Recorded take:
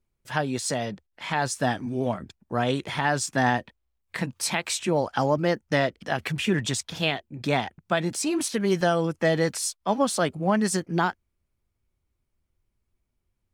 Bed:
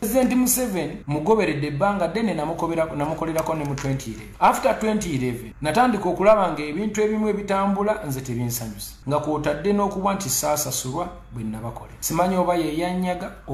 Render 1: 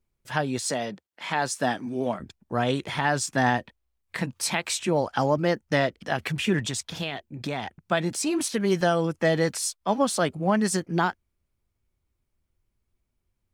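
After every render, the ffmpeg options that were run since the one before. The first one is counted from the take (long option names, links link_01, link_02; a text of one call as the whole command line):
ffmpeg -i in.wav -filter_complex "[0:a]asettb=1/sr,asplit=3[link_01][link_02][link_03];[link_01]atrim=end=0.654[link_04];[link_02]atrim=start=0.65:end=2.2,asetpts=PTS-STARTPTS,afade=type=in:duration=0.004:curve=qsin,afade=type=out:start_time=1.546:duration=0.004:curve=qsin,highpass=180[link_05];[link_03]atrim=start=2.196[link_06];[link_04][link_05]acrossfade=duration=0.004:curve1=hsin:curve2=qsin[link_07];[link_07][link_06]acrossfade=duration=0.004:curve1=qsin:curve2=hsin,asettb=1/sr,asplit=3[link_08][link_09][link_10];[link_08]atrim=end=6.594[link_11];[link_09]atrim=start=6.59:end=7.8,asetpts=PTS-STARTPTS,afade=type=in:duration=0.004:curve=qsin,afade=type=out:start_time=1.206:duration=0.004:curve=qsin,acompressor=threshold=-25dB:ratio=6:attack=3.2:release=140:knee=1:detection=peak[link_12];[link_10]atrim=start=7.796[link_13];[link_11][link_12]acrossfade=duration=0.004:curve1=hsin:curve2=qsin[link_14];[link_14][link_13]acrossfade=duration=0.004:curve1=qsin:curve2=hsin" out.wav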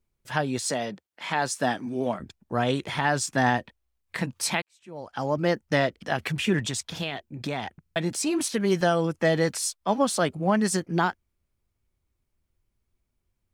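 ffmpeg -i in.wav -filter_complex "[0:a]asplit=5[link_01][link_02][link_03][link_04][link_05];[link_01]atrim=end=4.62,asetpts=PTS-STARTPTS,afade=type=out:start_time=4.616:duration=0.004:curve=hsin[link_06];[link_02]atrim=start=4.62:end=7.862,asetpts=PTS-STARTPTS,afade=type=in:duration=0.84:curve=qua[link_07];[link_03]atrim=start=7.808:end=7.862[link_08];[link_04]atrim=start=7.808:end=7.862[link_09];[link_05]atrim=start=7.958[link_10];[link_06][link_07]concat=n=2:v=0:a=1[link_11];[link_11][link_08]acrossfade=duration=0.004:curve1=hsin:curve2=hsin[link_12];[link_12][link_09]acrossfade=duration=0.004:curve1=hsin:curve2=hsin[link_13];[link_13][link_10]acrossfade=duration=0.004:curve1=hsin:curve2=hsin" out.wav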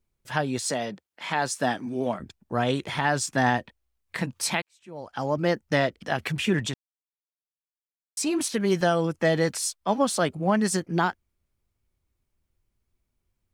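ffmpeg -i in.wav -filter_complex "[0:a]asplit=3[link_01][link_02][link_03];[link_01]atrim=end=6.74,asetpts=PTS-STARTPTS,afade=type=out:start_time=6.736:duration=0.004:curve=hsin[link_04];[link_02]atrim=start=6.74:end=8.17,asetpts=PTS-STARTPTS,volume=0[link_05];[link_03]atrim=start=8.17,asetpts=PTS-STARTPTS,afade=type=in:duration=0.004:curve=hsin[link_06];[link_04][link_05][link_06]concat=n=3:v=0:a=1" out.wav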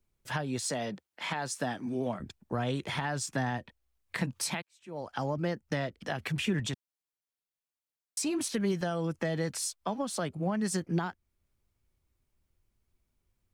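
ffmpeg -i in.wav -filter_complex "[0:a]alimiter=limit=-15dB:level=0:latency=1:release=446,acrossover=split=180[link_01][link_02];[link_02]acompressor=threshold=-32dB:ratio=3[link_03];[link_01][link_03]amix=inputs=2:normalize=0" out.wav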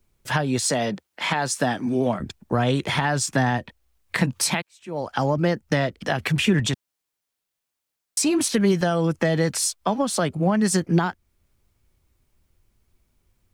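ffmpeg -i in.wav -af "volume=10.5dB" out.wav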